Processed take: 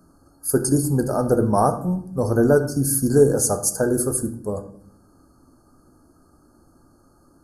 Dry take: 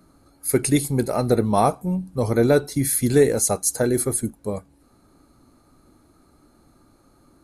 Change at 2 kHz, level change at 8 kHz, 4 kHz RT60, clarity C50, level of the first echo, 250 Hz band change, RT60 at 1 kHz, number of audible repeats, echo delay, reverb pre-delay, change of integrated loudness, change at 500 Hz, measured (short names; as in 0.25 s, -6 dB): -1.5 dB, 0.0 dB, 0.50 s, 11.5 dB, none, +1.0 dB, 0.65 s, none, none, 12 ms, +0.5 dB, +1.0 dB